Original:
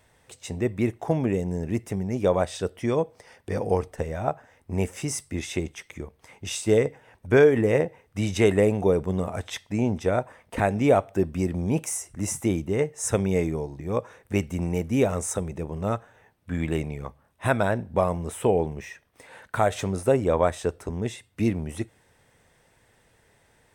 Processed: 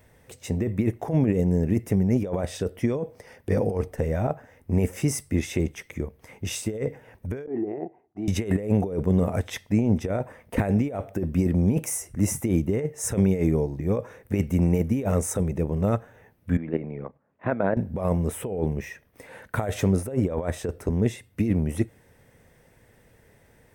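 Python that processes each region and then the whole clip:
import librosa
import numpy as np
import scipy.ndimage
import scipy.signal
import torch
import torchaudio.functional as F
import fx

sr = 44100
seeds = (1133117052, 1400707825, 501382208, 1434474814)

y = fx.chain(x, sr, fx.gate_hold(open_db=-51.0, close_db=-56.0, hold_ms=71.0, range_db=-21, attack_ms=1.4, release_ms=100.0),
    fx.over_compress(threshold_db=-24.0, ratio=-1.0),
    fx.double_bandpass(hz=510.0, octaves=1.0), at=(7.46, 8.28))
y = fx.chain(y, sr, fx.level_steps(step_db=12),
    fx.bandpass_edges(low_hz=190.0, high_hz=2100.0),
    fx.air_absorb(metres=150.0), at=(16.57, 17.77))
y = fx.graphic_eq_10(y, sr, hz=(250, 500, 2000, 4000, 8000), db=(4, 7, 5, -5, -10))
y = fx.over_compress(y, sr, threshold_db=-21.0, ratio=-1.0)
y = fx.bass_treble(y, sr, bass_db=9, treble_db=12)
y = y * librosa.db_to_amplitude(-6.0)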